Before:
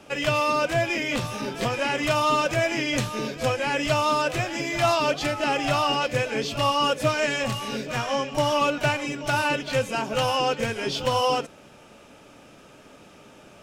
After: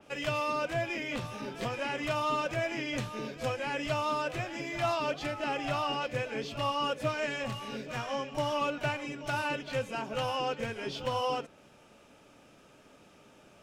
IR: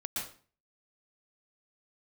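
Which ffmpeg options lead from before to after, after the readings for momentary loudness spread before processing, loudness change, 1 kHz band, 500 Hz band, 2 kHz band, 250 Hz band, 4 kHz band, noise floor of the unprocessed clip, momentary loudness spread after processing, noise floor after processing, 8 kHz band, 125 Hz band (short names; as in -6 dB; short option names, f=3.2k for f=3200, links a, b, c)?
6 LU, -9.0 dB, -8.5 dB, -8.5 dB, -9.0 dB, -8.5 dB, -10.0 dB, -50 dBFS, 6 LU, -59 dBFS, -13.0 dB, -8.5 dB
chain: -af "adynamicequalizer=threshold=0.00794:dfrequency=4000:dqfactor=0.7:tfrequency=4000:tqfactor=0.7:attack=5:release=100:ratio=0.375:range=3:mode=cutabove:tftype=highshelf,volume=-8.5dB"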